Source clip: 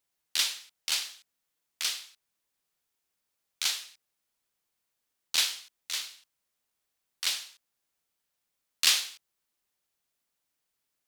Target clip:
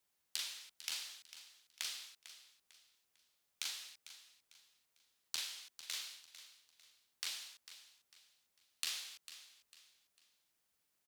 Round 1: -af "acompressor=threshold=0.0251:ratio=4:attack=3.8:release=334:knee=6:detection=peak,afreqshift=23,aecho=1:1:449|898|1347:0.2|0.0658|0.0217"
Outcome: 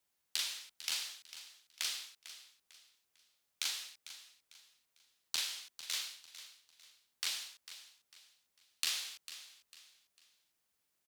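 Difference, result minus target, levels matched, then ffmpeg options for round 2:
compression: peak gain reduction -5.5 dB
-af "acompressor=threshold=0.0112:ratio=4:attack=3.8:release=334:knee=6:detection=peak,afreqshift=23,aecho=1:1:449|898|1347:0.2|0.0658|0.0217"

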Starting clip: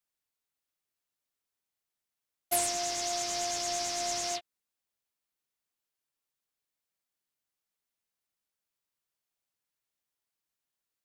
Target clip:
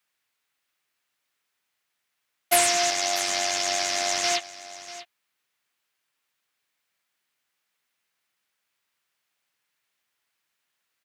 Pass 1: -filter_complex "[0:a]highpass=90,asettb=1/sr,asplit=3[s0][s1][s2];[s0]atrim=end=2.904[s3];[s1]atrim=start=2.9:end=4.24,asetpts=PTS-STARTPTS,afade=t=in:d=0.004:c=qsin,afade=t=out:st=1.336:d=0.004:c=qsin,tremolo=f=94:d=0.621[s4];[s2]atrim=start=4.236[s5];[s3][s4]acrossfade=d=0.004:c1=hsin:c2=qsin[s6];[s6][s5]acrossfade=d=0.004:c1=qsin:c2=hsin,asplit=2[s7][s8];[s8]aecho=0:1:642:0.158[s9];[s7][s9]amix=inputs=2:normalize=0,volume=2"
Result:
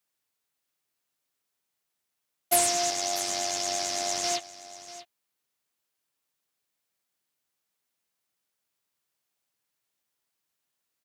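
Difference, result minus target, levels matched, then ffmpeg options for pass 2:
2 kHz band -6.0 dB
-filter_complex "[0:a]highpass=90,equalizer=f=2000:w=0.58:g=10,asettb=1/sr,asplit=3[s0][s1][s2];[s0]atrim=end=2.904[s3];[s1]atrim=start=2.9:end=4.24,asetpts=PTS-STARTPTS,afade=t=in:d=0.004:c=qsin,afade=t=out:st=1.336:d=0.004:c=qsin,tremolo=f=94:d=0.621[s4];[s2]atrim=start=4.236[s5];[s3][s4]acrossfade=d=0.004:c1=hsin:c2=qsin[s6];[s6][s5]acrossfade=d=0.004:c1=qsin:c2=hsin,asplit=2[s7][s8];[s8]aecho=0:1:642:0.158[s9];[s7][s9]amix=inputs=2:normalize=0,volume=2"

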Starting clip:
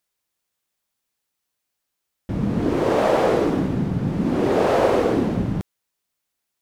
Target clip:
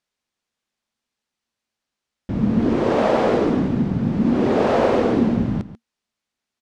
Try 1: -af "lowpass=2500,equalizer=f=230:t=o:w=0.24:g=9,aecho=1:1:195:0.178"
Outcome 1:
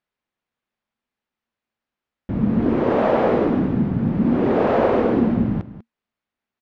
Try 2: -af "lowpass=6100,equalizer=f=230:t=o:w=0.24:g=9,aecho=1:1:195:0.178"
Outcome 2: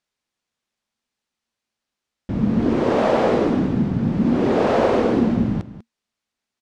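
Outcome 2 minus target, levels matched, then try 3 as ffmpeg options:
echo 55 ms late
-af "lowpass=6100,equalizer=f=230:t=o:w=0.24:g=9,aecho=1:1:140:0.178"

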